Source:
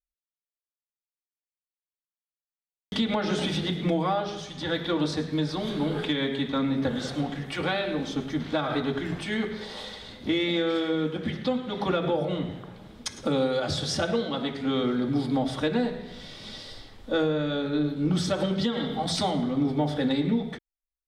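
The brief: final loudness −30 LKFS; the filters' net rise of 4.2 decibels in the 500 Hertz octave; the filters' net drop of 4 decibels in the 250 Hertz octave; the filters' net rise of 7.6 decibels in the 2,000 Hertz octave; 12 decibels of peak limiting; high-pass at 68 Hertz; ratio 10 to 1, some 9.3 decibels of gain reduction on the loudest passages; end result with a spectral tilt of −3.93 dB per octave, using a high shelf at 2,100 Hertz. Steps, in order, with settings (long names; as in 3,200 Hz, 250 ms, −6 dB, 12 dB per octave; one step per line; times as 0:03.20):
high-pass filter 68 Hz
parametric band 250 Hz −7.5 dB
parametric band 500 Hz +6 dB
parametric band 2,000 Hz +5 dB
high-shelf EQ 2,100 Hz +8 dB
downward compressor 10 to 1, threshold −27 dBFS
level +3 dB
brickwall limiter −21 dBFS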